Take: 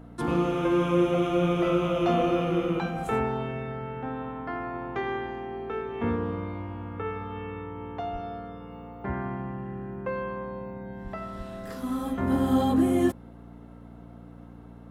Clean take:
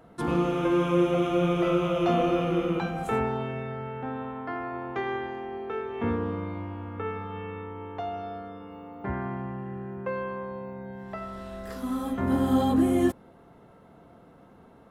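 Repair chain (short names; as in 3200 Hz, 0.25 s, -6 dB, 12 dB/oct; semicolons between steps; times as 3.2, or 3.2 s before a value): de-hum 58.4 Hz, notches 5; 8.12–8.24 HPF 140 Hz 24 dB/oct; 11.03–11.15 HPF 140 Hz 24 dB/oct; 11.37–11.49 HPF 140 Hz 24 dB/oct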